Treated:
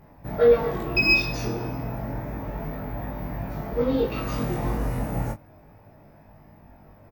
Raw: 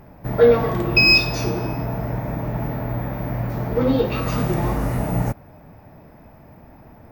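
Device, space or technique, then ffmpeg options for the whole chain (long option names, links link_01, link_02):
double-tracked vocal: -filter_complex "[0:a]asplit=2[link_01][link_02];[link_02]adelay=19,volume=-5.5dB[link_03];[link_01][link_03]amix=inputs=2:normalize=0,flanger=delay=20:depth=3.1:speed=0.31,volume=-3.5dB"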